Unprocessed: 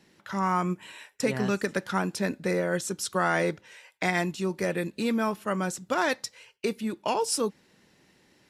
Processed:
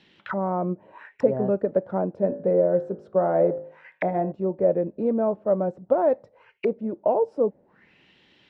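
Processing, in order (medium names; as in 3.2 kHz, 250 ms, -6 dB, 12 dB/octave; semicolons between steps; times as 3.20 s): 2.12–4.32 s: de-hum 52.07 Hz, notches 37; touch-sensitive low-pass 600–3500 Hz down, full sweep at -32 dBFS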